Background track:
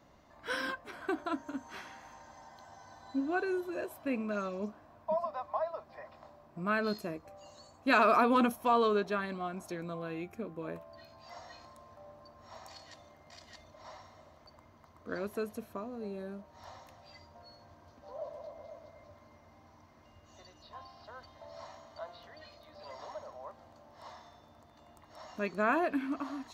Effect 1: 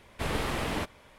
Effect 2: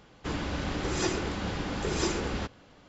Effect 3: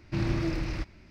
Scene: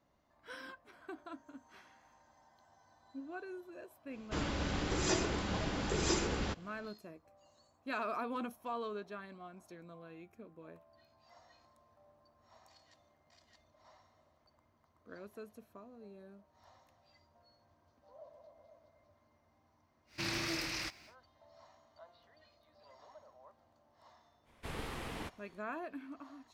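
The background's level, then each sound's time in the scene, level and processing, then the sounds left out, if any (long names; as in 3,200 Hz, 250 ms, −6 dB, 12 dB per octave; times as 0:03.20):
background track −13 dB
0:04.07: mix in 2 −4 dB, fades 0.10 s + high-shelf EQ 6,400 Hz +5 dB
0:20.06: mix in 3 −3 dB, fades 0.10 s + spectral tilt +4.5 dB per octave
0:24.44: mix in 1 −11.5 dB, fades 0.05 s + notch filter 610 Hz, Q 11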